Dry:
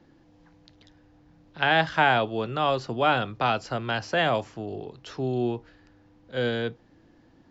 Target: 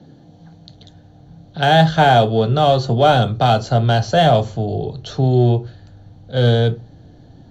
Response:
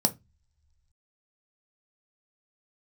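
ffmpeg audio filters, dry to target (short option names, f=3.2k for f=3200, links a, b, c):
-filter_complex "[0:a]asplit=2[a][b];[b]asoftclip=type=hard:threshold=-26.5dB,volume=-5dB[c];[a][c]amix=inputs=2:normalize=0,asubboost=boost=6.5:cutoff=72[d];[1:a]atrim=start_sample=2205,asetrate=33957,aresample=44100[e];[d][e]afir=irnorm=-1:irlink=0,volume=-6dB"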